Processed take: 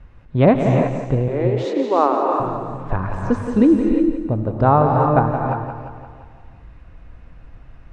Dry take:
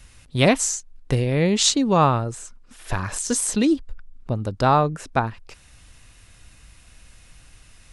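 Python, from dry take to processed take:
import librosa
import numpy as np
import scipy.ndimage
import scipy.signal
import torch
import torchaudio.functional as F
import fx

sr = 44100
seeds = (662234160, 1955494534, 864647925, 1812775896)

y = scipy.signal.sosfilt(scipy.signal.butter(2, 1100.0, 'lowpass', fs=sr, output='sos'), x)
y = fx.echo_feedback(y, sr, ms=173, feedback_pct=55, wet_db=-9)
y = fx.rider(y, sr, range_db=4, speed_s=2.0)
y = fx.steep_highpass(y, sr, hz=300.0, slope=36, at=(1.28, 2.4))
y = fx.rev_gated(y, sr, seeds[0], gate_ms=380, shape='rising', drr_db=2.5)
y = F.gain(torch.from_numpy(y), 3.0).numpy()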